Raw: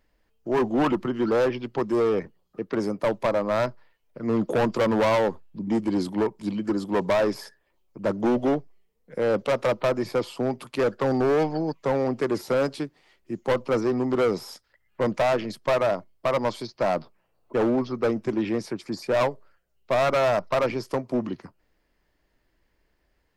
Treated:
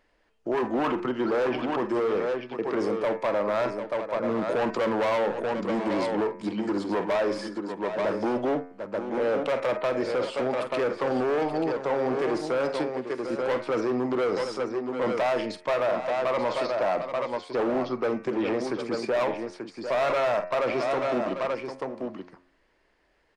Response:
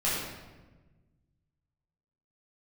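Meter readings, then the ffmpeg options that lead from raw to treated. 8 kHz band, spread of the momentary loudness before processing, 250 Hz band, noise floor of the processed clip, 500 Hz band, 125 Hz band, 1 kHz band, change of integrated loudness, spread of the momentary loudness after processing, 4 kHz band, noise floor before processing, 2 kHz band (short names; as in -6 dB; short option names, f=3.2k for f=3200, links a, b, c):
n/a, 8 LU, -3.0 dB, -67 dBFS, -1.0 dB, -8.0 dB, -0.5 dB, -2.0 dB, 5 LU, -1.5 dB, -71 dBFS, 0.0 dB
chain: -filter_complex "[0:a]aecho=1:1:48|746|884:0.188|0.158|0.335,asplit=2[a][b];[b]acompressor=threshold=-33dB:ratio=6,volume=-1dB[c];[a][c]amix=inputs=2:normalize=0,aresample=22050,aresample=44100,bandreject=f=89.5:t=h:w=4,bandreject=f=179:t=h:w=4,bandreject=f=268.5:t=h:w=4,bandreject=f=358:t=h:w=4,bandreject=f=447.5:t=h:w=4,bandreject=f=537:t=h:w=4,bandreject=f=626.5:t=h:w=4,bandreject=f=716:t=h:w=4,bandreject=f=805.5:t=h:w=4,bandreject=f=895:t=h:w=4,bandreject=f=984.5:t=h:w=4,bandreject=f=1.074k:t=h:w=4,bandreject=f=1.1635k:t=h:w=4,bandreject=f=1.253k:t=h:w=4,bandreject=f=1.3425k:t=h:w=4,bandreject=f=1.432k:t=h:w=4,bandreject=f=1.5215k:t=h:w=4,bandreject=f=1.611k:t=h:w=4,bandreject=f=1.7005k:t=h:w=4,bandreject=f=1.79k:t=h:w=4,bandreject=f=1.8795k:t=h:w=4,bandreject=f=1.969k:t=h:w=4,bandreject=f=2.0585k:t=h:w=4,bandreject=f=2.148k:t=h:w=4,bandreject=f=2.2375k:t=h:w=4,bandreject=f=2.327k:t=h:w=4,bandreject=f=2.4165k:t=h:w=4,bandreject=f=2.506k:t=h:w=4,bandreject=f=2.5955k:t=h:w=4,bandreject=f=2.685k:t=h:w=4,volume=17.5dB,asoftclip=hard,volume=-17.5dB,bass=f=250:g=-11,treble=f=4k:g=-7,alimiter=limit=-19.5dB:level=0:latency=1:release=10,volume=1dB"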